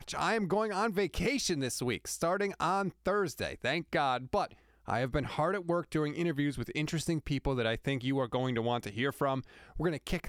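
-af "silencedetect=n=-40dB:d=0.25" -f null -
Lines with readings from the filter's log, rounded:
silence_start: 4.51
silence_end: 4.88 | silence_duration: 0.37
silence_start: 9.41
silence_end: 9.76 | silence_duration: 0.35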